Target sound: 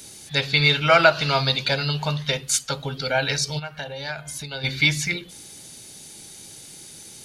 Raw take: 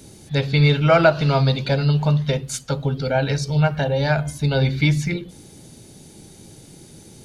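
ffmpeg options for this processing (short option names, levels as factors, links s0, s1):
-filter_complex "[0:a]asplit=3[s0][s1][s2];[s0]afade=t=out:st=3.58:d=0.02[s3];[s1]acompressor=threshold=0.0447:ratio=6,afade=t=in:st=3.58:d=0.02,afade=t=out:st=4.63:d=0.02[s4];[s2]afade=t=in:st=4.63:d=0.02[s5];[s3][s4][s5]amix=inputs=3:normalize=0,tiltshelf=f=820:g=-8.5,volume=0.891"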